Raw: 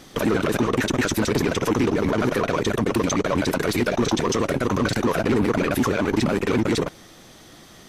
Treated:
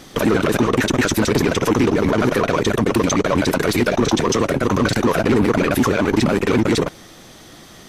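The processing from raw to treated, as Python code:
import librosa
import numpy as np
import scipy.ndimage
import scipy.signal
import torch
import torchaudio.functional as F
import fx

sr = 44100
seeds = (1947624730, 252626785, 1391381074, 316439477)

y = fx.band_widen(x, sr, depth_pct=40, at=(4.0, 4.63))
y = y * 10.0 ** (4.5 / 20.0)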